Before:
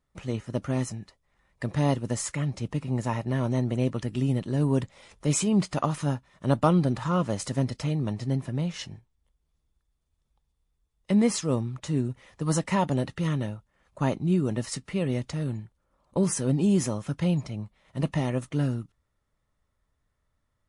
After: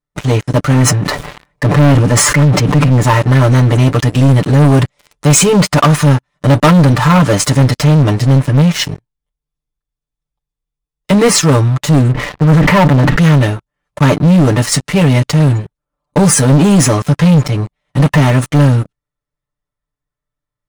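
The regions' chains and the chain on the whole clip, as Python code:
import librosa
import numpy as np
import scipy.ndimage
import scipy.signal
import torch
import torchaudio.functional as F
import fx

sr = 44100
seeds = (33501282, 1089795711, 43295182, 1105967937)

y = fx.chain(x, sr, fx.highpass(hz=79.0, slope=6),
    fx.high_shelf(hz=3000.0, db=-10.5),
    fx.sustainer(db_per_s=39.0), at=(0.73, 3.03))
y = fx.chain(y, sr, fx.air_absorb(metres=450.0),
    fx.sustainer(db_per_s=49.0), at=(12.11, 13.18))
y = y + 0.96 * np.pad(y, (int(6.8 * sr / 1000.0), 0))[:len(y)]
y = fx.dynamic_eq(y, sr, hz=1500.0, q=0.94, threshold_db=-41.0, ratio=4.0, max_db=4)
y = fx.leveller(y, sr, passes=5)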